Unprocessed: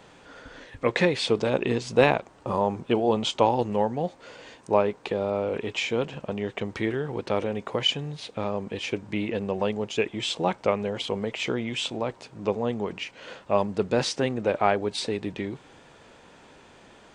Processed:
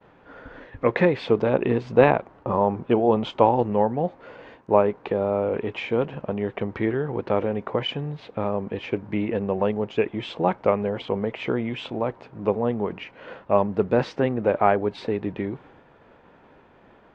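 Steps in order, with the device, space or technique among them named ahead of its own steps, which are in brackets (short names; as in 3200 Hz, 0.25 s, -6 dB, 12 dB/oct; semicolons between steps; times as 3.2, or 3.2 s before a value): hearing-loss simulation (LPF 1800 Hz 12 dB/oct; expander -48 dBFS); gain +3.5 dB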